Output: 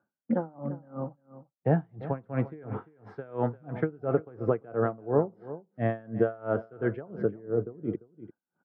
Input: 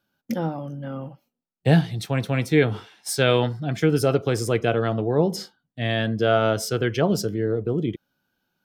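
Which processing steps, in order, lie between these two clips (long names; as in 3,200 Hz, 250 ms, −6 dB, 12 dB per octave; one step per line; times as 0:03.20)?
high-pass filter 100 Hz
downward compressor, threshold −21 dBFS, peak gain reduction 8.5 dB
low-pass filter 1,400 Hz 24 dB per octave
low-shelf EQ 210 Hz −4.5 dB
on a send: single-tap delay 345 ms −15 dB
on the sum: tremolo with a sine in dB 2.9 Hz, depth 26 dB
level +4.5 dB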